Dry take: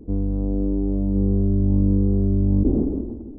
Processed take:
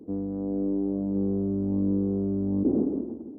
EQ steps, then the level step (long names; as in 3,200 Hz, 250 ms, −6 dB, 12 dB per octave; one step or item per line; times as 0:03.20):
high-pass filter 210 Hz 12 dB per octave
−1.5 dB